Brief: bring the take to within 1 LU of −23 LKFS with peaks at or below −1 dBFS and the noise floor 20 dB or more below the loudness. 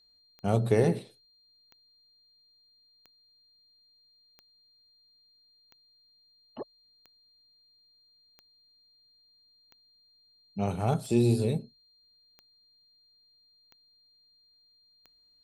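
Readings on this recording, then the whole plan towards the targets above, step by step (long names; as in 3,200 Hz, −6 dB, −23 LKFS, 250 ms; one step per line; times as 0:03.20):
number of clicks 12; interfering tone 4,200 Hz; level of the tone −62 dBFS; integrated loudness −28.5 LKFS; sample peak −10.5 dBFS; target loudness −23.0 LKFS
→ click removal
notch filter 4,200 Hz, Q 30
level +5.5 dB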